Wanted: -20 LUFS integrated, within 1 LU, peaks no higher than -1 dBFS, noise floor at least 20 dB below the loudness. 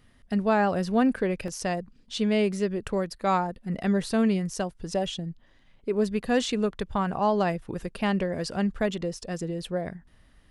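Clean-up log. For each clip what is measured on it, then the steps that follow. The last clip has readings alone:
dropouts 1; longest dropout 1.3 ms; loudness -27.5 LUFS; peak level -11.0 dBFS; loudness target -20.0 LUFS
-> interpolate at 1.48 s, 1.3 ms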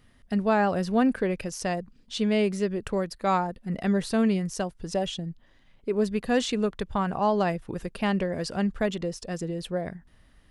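dropouts 0; loudness -27.5 LUFS; peak level -11.0 dBFS; loudness target -20.0 LUFS
-> trim +7.5 dB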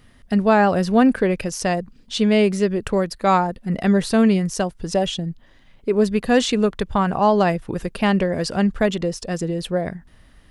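loudness -20.0 LUFS; peak level -3.5 dBFS; noise floor -52 dBFS

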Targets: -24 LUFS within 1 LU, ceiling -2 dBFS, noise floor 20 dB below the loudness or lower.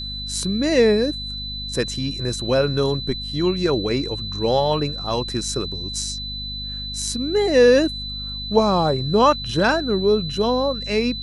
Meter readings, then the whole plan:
hum 50 Hz; highest harmonic 250 Hz; hum level -32 dBFS; steady tone 4 kHz; tone level -29 dBFS; loudness -21.0 LUFS; peak level -3.0 dBFS; loudness target -24.0 LUFS
-> de-hum 50 Hz, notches 5; band-stop 4 kHz, Q 30; trim -3 dB

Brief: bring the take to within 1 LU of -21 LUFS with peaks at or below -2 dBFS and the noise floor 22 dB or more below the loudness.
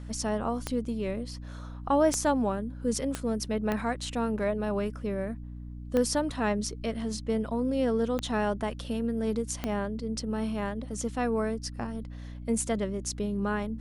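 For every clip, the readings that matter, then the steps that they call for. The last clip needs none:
clicks found 7; hum 60 Hz; highest harmonic 300 Hz; hum level -38 dBFS; loudness -30.5 LUFS; peak level -12.5 dBFS; loudness target -21.0 LUFS
-> de-click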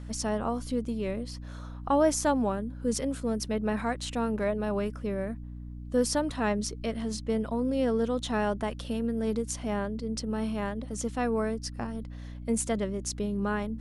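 clicks found 0; hum 60 Hz; highest harmonic 300 Hz; hum level -38 dBFS
-> de-hum 60 Hz, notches 5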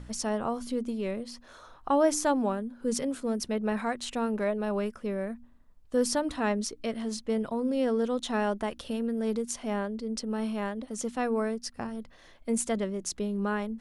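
hum not found; loudness -30.5 LUFS; peak level -13.0 dBFS; loudness target -21.0 LUFS
-> trim +9.5 dB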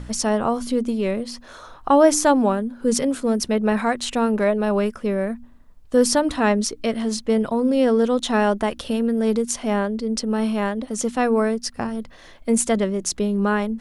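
loudness -21.0 LUFS; peak level -3.5 dBFS; noise floor -45 dBFS

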